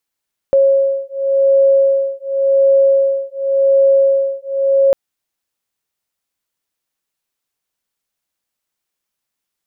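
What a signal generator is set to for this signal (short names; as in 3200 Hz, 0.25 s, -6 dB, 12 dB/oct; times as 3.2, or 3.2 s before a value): beating tones 546 Hz, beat 0.9 Hz, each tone -13 dBFS 4.40 s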